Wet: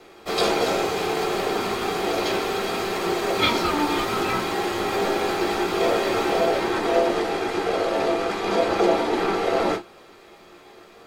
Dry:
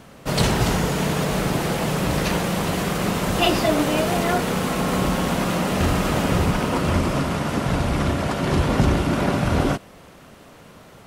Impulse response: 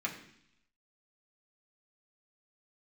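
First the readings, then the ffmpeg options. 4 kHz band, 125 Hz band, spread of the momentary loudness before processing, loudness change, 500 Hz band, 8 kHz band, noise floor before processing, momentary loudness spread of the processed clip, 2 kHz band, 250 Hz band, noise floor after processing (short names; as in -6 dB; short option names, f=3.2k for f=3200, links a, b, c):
0.0 dB, -16.5 dB, 3 LU, -1.5 dB, +2.5 dB, -5.5 dB, -46 dBFS, 4 LU, -0.5 dB, -5.0 dB, -48 dBFS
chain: -filter_complex "[0:a]flanger=delay=10:depth=5.9:regen=68:speed=0.59:shape=triangular,aeval=exprs='val(0)*sin(2*PI*590*n/s)':c=same[a];[1:a]atrim=start_sample=2205,atrim=end_sample=3969,asetrate=83790,aresample=44100[b];[a][b]afir=irnorm=-1:irlink=0,volume=8.5dB"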